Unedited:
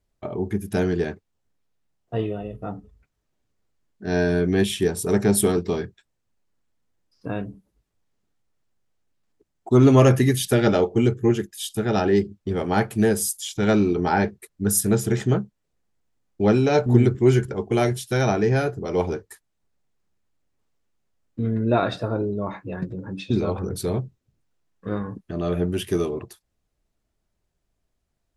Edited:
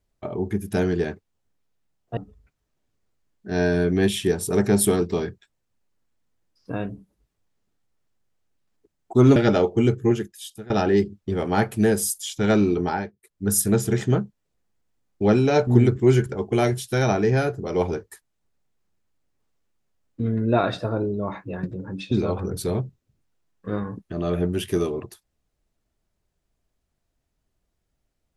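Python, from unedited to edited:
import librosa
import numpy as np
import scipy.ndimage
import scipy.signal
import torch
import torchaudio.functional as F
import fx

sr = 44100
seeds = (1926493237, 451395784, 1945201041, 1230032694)

y = fx.edit(x, sr, fx.cut(start_s=2.17, length_s=0.56),
    fx.cut(start_s=9.92, length_s=0.63),
    fx.fade_out_to(start_s=11.23, length_s=0.66, floor_db=-19.5),
    fx.fade_down_up(start_s=13.98, length_s=0.73, db=-20.5, fade_s=0.32), tone=tone)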